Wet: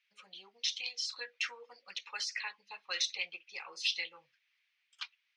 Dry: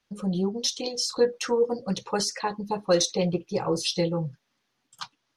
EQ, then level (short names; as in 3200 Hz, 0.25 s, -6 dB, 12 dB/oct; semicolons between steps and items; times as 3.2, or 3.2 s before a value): resonant high-pass 2300 Hz, resonance Q 3.7; air absorption 140 m; -3.5 dB